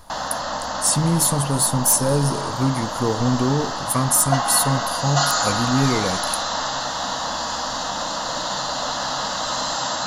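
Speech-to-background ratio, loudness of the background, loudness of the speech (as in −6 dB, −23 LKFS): 3.5 dB, −24.5 LKFS, −21.0 LKFS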